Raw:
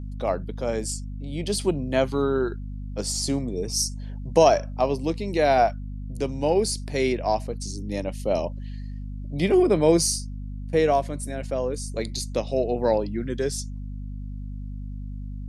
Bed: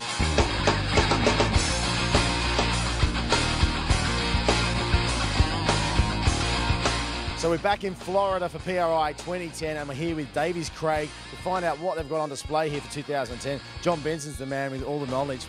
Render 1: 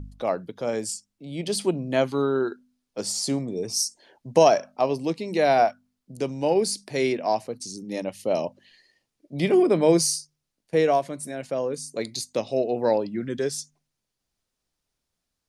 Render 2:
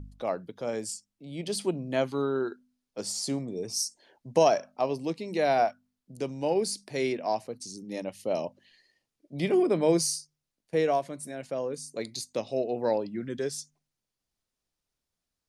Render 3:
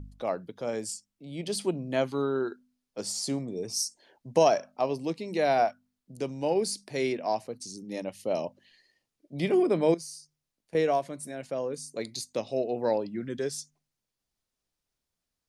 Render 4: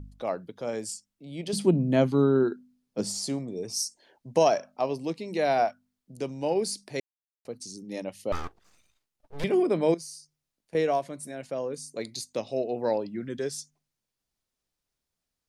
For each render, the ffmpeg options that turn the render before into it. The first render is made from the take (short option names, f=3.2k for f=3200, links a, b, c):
-af "bandreject=f=50:t=h:w=4,bandreject=f=100:t=h:w=4,bandreject=f=150:t=h:w=4,bandreject=f=200:t=h:w=4,bandreject=f=250:t=h:w=4"
-af "volume=-5dB"
-filter_complex "[0:a]asettb=1/sr,asplit=3[a][b][c];[a]atrim=end=9.944[d];[b]atrim=start=9.94:end=10.75,asetpts=PTS-STARTPTS,afade=t=in:d=0.004:c=qsin,afade=t=out:st=0.806:d=0.004:c=qsin,acompressor=threshold=-43dB:ratio=3:attack=3.2:release=140:knee=1:detection=peak[e];[c]atrim=start=10.746[f];[d][e]acrossfade=d=0.004:c1=hsin:c2=qsin[g];[g][f]acrossfade=d=0.004:c1=qsin:c2=hsin"
-filter_complex "[0:a]asettb=1/sr,asplit=3[a][b][c];[a]atrim=end=1.534[d];[b]atrim=start=1.53:end=3.27,asetpts=PTS-STARTPTS,afade=t=in:d=0.004:c=qsin,afade=t=out:st=1.736:d=0.004:c=qsin,equalizer=f=170:t=o:w=2.3:g=12.5[e];[c]atrim=start=3.266[f];[d][e]acrossfade=d=0.004:c1=hsin:c2=qsin[g];[g][f]acrossfade=d=0.004:c1=qsin:c2=hsin,asettb=1/sr,asplit=3[h][i][j];[h]atrim=end=8.324[k];[i]atrim=start=8.32:end=9.44,asetpts=PTS-STARTPTS,afade=t=in:d=0.004:c=qsin,afade=t=out:st=1.116:d=0.004:c=qsin,aeval=exprs='abs(val(0))':c=same[l];[j]atrim=start=9.436[m];[k][l]acrossfade=d=0.004:c1=hsin:c2=qsin[n];[n][m]acrossfade=d=0.004:c1=qsin:c2=hsin,asplit=3[o][p][q];[o]atrim=end=7,asetpts=PTS-STARTPTS,afade=t=out:st=6.996:d=0.004:c=hsin[r];[p]atrim=start=7:end=7.45,asetpts=PTS-STARTPTS,volume=0[s];[q]atrim=start=7.45,asetpts=PTS-STARTPTS,afade=t=in:d=0.004:c=hsin[t];[r][s][t]concat=n=3:v=0:a=1"